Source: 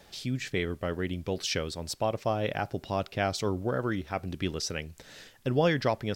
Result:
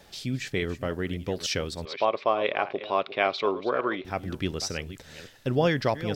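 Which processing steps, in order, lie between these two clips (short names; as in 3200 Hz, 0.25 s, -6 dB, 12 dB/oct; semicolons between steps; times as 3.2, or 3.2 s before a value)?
reverse delay 0.293 s, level -13.5 dB; 1.85–4.05 speaker cabinet 330–4000 Hz, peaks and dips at 400 Hz +6 dB, 610 Hz +3 dB, 1100 Hz +10 dB, 2300 Hz +8 dB, 3700 Hz +7 dB; gain +1.5 dB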